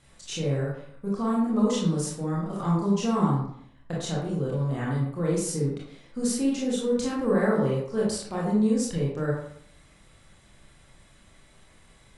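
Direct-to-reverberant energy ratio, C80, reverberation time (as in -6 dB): -5.5 dB, 5.5 dB, 0.65 s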